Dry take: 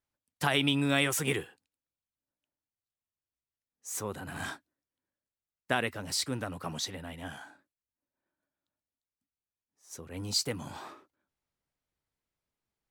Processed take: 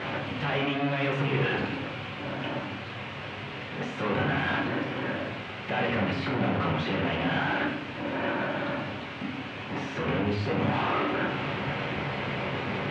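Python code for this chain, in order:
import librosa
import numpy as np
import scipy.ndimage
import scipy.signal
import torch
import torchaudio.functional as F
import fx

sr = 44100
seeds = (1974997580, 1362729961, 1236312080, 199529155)

y = np.sign(x) * np.sqrt(np.mean(np.square(x)))
y = scipy.signal.sosfilt(scipy.signal.cheby1(3, 1.0, [110.0, 2800.0], 'bandpass', fs=sr, output='sos'), y)
y = fx.room_shoebox(y, sr, seeds[0], volume_m3=150.0, walls='mixed', distance_m=1.0)
y = y * 10.0 ** (8.0 / 20.0)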